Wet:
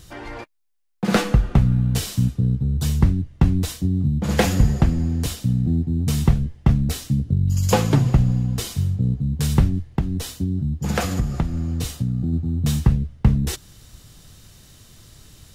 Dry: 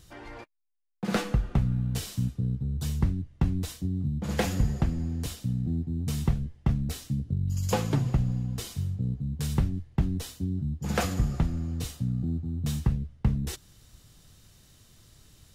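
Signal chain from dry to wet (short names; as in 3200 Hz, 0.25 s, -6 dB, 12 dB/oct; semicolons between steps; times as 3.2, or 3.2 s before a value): 9.88–12.33 compressor 2.5:1, threshold -29 dBFS, peak gain reduction 7.5 dB; gain +9 dB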